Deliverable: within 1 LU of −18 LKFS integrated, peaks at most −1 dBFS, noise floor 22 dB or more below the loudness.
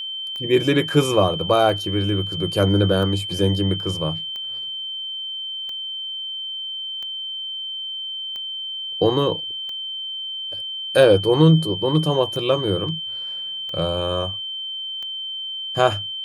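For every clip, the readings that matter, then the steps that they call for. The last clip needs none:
number of clicks 12; interfering tone 3,100 Hz; level of the tone −27 dBFS; integrated loudness −21.5 LKFS; sample peak −1.0 dBFS; target loudness −18.0 LKFS
→ click removal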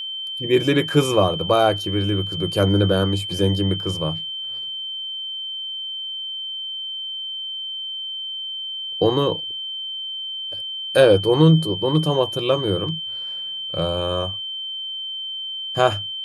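number of clicks 0; interfering tone 3,100 Hz; level of the tone −27 dBFS
→ notch filter 3,100 Hz, Q 30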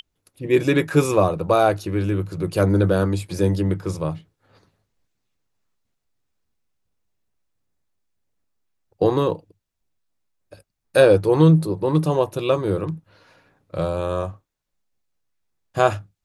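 interfering tone none found; integrated loudness −20.5 LKFS; sample peak −1.0 dBFS; target loudness −18.0 LKFS
→ level +2.5 dB
brickwall limiter −1 dBFS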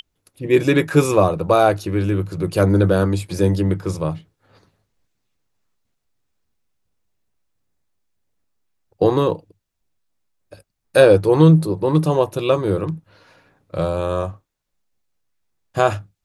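integrated loudness −18.0 LKFS; sample peak −1.0 dBFS; background noise floor −75 dBFS

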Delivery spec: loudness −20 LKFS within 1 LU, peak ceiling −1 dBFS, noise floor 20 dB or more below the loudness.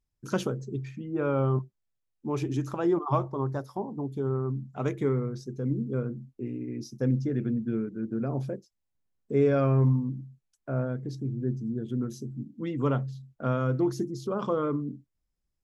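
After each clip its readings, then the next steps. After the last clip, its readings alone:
integrated loudness −30.0 LKFS; sample peak −13.5 dBFS; target loudness −20.0 LKFS
→ level +10 dB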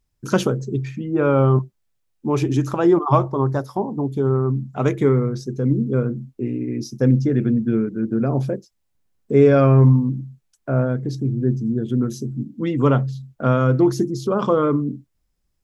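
integrated loudness −20.0 LKFS; sample peak −3.5 dBFS; background noise floor −71 dBFS

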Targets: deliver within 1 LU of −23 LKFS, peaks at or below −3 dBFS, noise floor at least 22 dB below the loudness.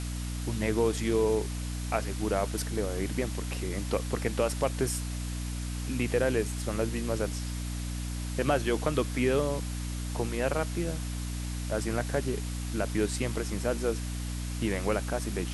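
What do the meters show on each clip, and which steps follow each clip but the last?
mains hum 60 Hz; hum harmonics up to 300 Hz; level of the hum −32 dBFS; background noise floor −35 dBFS; target noise floor −53 dBFS; integrated loudness −31.0 LKFS; sample peak −12.0 dBFS; target loudness −23.0 LKFS
→ mains-hum notches 60/120/180/240/300 Hz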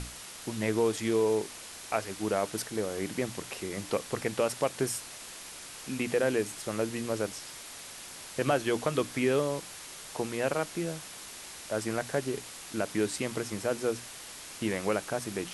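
mains hum none found; background noise floor −45 dBFS; target noise floor −55 dBFS
→ broadband denoise 10 dB, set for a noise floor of −45 dBFS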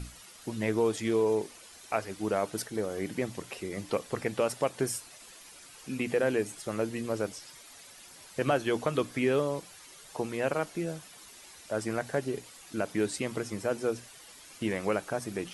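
background noise floor −52 dBFS; target noise floor −54 dBFS
→ broadband denoise 6 dB, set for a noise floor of −52 dBFS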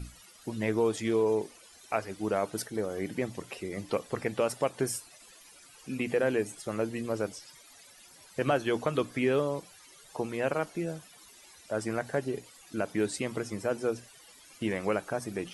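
background noise floor −55 dBFS; integrated loudness −32.0 LKFS; sample peak −13.5 dBFS; target loudness −23.0 LKFS
→ level +9 dB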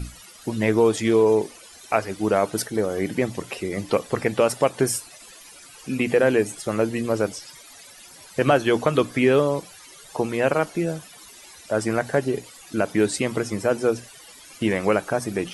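integrated loudness −23.0 LKFS; sample peak −4.5 dBFS; background noise floor −46 dBFS

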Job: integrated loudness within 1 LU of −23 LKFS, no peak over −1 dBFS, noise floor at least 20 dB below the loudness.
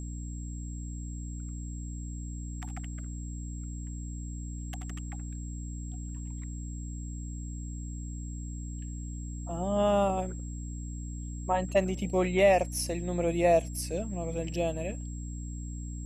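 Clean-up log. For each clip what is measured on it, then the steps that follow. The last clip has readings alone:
mains hum 60 Hz; hum harmonics up to 300 Hz; level of the hum −35 dBFS; interfering tone 7,600 Hz; level of the tone −49 dBFS; integrated loudness −33.0 LKFS; sample peak −11.5 dBFS; target loudness −23.0 LKFS
→ hum removal 60 Hz, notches 5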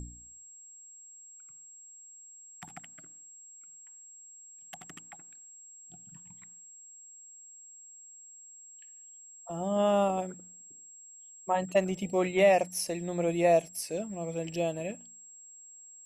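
mains hum none found; interfering tone 7,600 Hz; level of the tone −49 dBFS
→ notch filter 7,600 Hz, Q 30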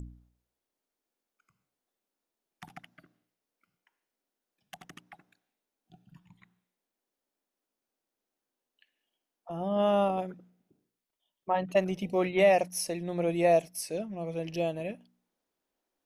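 interfering tone none found; integrated loudness −29.0 LKFS; sample peak −11.5 dBFS; target loudness −23.0 LKFS
→ level +6 dB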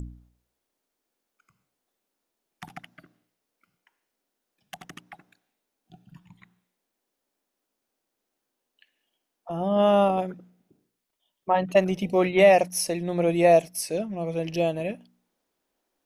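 integrated loudness −23.0 LKFS; sample peak −5.5 dBFS; background noise floor −82 dBFS

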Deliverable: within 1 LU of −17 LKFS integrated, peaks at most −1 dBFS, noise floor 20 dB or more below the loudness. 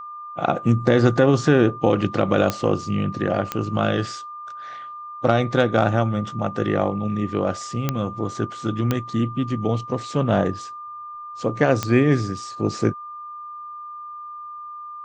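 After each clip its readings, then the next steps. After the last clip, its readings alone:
number of clicks 5; interfering tone 1,200 Hz; level of the tone −33 dBFS; integrated loudness −22.0 LKFS; sample peak −3.0 dBFS; target loudness −17.0 LKFS
→ click removal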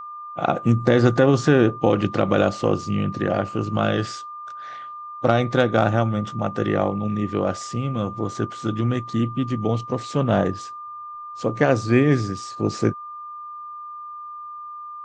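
number of clicks 0; interfering tone 1,200 Hz; level of the tone −33 dBFS
→ notch filter 1,200 Hz, Q 30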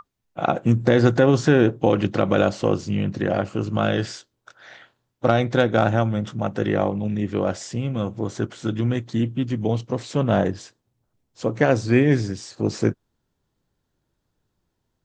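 interfering tone none found; integrated loudness −22.0 LKFS; sample peak −3.0 dBFS; target loudness −17.0 LKFS
→ level +5 dB
brickwall limiter −1 dBFS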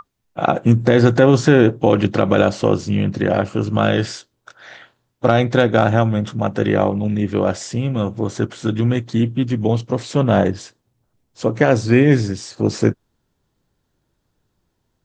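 integrated loudness −17.5 LKFS; sample peak −1.0 dBFS; background noise floor −71 dBFS

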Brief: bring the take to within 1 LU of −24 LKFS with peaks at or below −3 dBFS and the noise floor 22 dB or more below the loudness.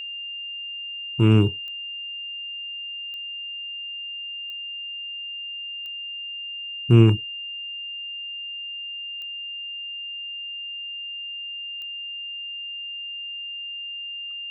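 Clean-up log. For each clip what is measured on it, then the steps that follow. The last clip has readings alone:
number of clicks 6; interfering tone 2,800 Hz; level of the tone −31 dBFS; integrated loudness −27.0 LKFS; sample peak −4.0 dBFS; target loudness −24.0 LKFS
→ click removal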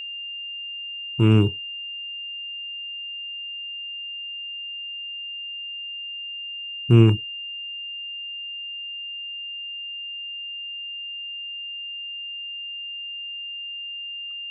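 number of clicks 0; interfering tone 2,800 Hz; level of the tone −31 dBFS
→ notch filter 2,800 Hz, Q 30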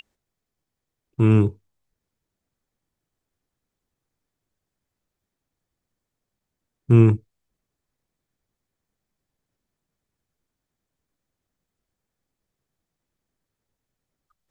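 interfering tone none found; integrated loudness −19.0 LKFS; sample peak −4.0 dBFS; target loudness −24.0 LKFS
→ level −5 dB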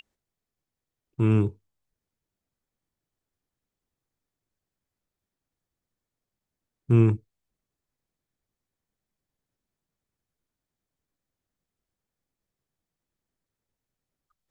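integrated loudness −24.0 LKFS; sample peak −9.0 dBFS; background noise floor −88 dBFS

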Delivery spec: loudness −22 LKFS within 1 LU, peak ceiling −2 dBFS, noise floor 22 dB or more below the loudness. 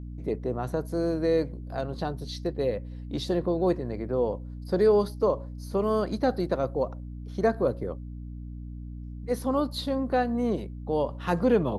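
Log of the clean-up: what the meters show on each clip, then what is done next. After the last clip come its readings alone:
mains hum 60 Hz; hum harmonics up to 300 Hz; level of the hum −36 dBFS; integrated loudness −28.0 LKFS; sample peak −11.5 dBFS; target loudness −22.0 LKFS
→ mains-hum notches 60/120/180/240/300 Hz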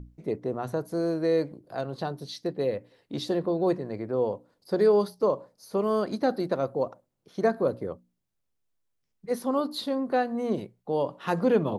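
mains hum none found; integrated loudness −28.5 LKFS; sample peak −12.0 dBFS; target loudness −22.0 LKFS
→ level +6.5 dB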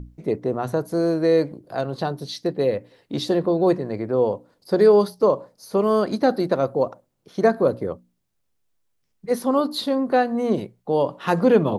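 integrated loudness −22.0 LKFS; sample peak −5.5 dBFS; background noise floor −71 dBFS

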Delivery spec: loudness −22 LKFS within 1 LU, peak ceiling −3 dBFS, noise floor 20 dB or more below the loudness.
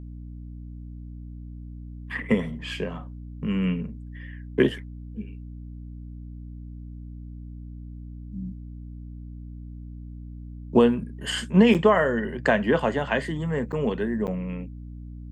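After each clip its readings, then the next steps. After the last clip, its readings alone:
number of dropouts 3; longest dropout 8.0 ms; mains hum 60 Hz; hum harmonics up to 300 Hz; level of the hum −37 dBFS; integrated loudness −24.5 LKFS; sample peak −6.0 dBFS; target loudness −22.0 LKFS
→ repair the gap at 0:11.74/0:13.72/0:14.27, 8 ms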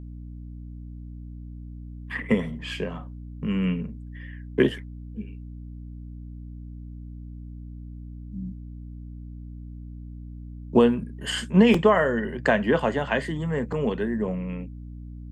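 number of dropouts 0; mains hum 60 Hz; hum harmonics up to 300 Hz; level of the hum −37 dBFS
→ hum removal 60 Hz, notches 5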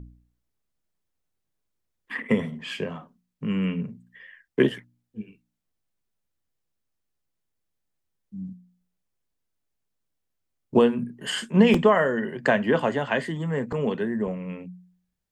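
mains hum none found; integrated loudness −24.5 LKFS; sample peak −4.5 dBFS; target loudness −22.0 LKFS
→ level +2.5 dB
brickwall limiter −3 dBFS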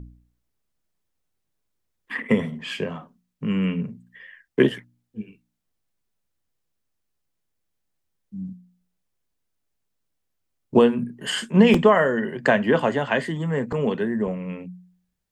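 integrated loudness −22.0 LKFS; sample peak −3.0 dBFS; background noise floor −77 dBFS

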